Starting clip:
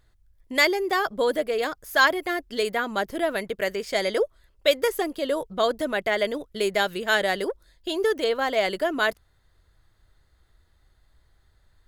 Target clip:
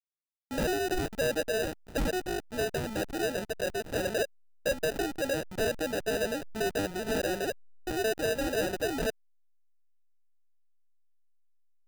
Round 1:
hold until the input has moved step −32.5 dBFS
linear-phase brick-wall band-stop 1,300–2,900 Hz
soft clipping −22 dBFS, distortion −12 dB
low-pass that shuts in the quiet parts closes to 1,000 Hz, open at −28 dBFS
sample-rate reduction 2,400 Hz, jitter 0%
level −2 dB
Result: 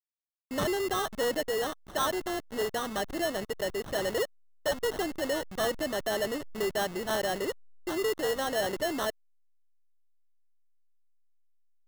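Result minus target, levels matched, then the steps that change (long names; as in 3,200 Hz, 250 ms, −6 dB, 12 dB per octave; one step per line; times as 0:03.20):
sample-rate reduction: distortion −17 dB
change: sample-rate reduction 1,100 Hz, jitter 0%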